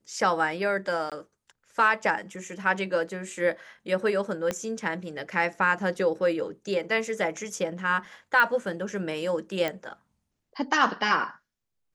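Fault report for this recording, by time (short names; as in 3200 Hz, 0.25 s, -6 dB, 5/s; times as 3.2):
1.1–1.12 gap 17 ms
4.51 pop -14 dBFS
8.4 pop -12 dBFS
9.68 pop -15 dBFS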